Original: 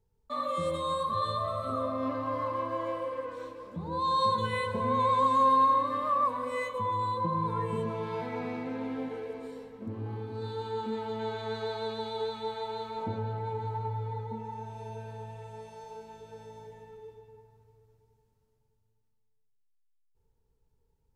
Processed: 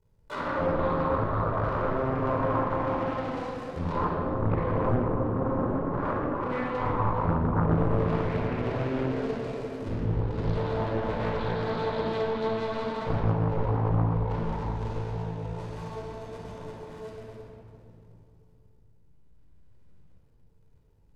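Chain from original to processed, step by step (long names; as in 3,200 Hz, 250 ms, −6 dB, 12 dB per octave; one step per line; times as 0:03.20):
sub-harmonics by changed cycles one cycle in 2, muted
low-shelf EQ 210 Hz +4 dB
treble cut that deepens with the level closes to 400 Hz, closed at −25.5 dBFS
rectangular room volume 3,300 cubic metres, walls mixed, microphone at 4.8 metres
highs frequency-modulated by the lows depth 0.74 ms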